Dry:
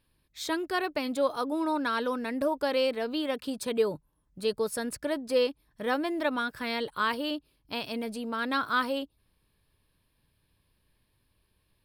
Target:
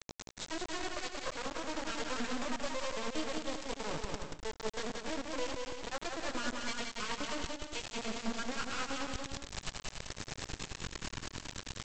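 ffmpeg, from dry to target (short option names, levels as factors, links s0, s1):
-af "aeval=exprs='val(0)+0.5*0.00841*sgn(val(0))':c=same,areverse,acompressor=threshold=0.01:ratio=8,areverse,flanger=delay=16:depth=7.4:speed=0.32,tremolo=f=9.4:d=0.65,aresample=16000,acrusher=bits=5:dc=4:mix=0:aa=0.000001,aresample=44100,aecho=1:1:180|288|352.8|391.7|415:0.631|0.398|0.251|0.158|0.1,volume=3.55"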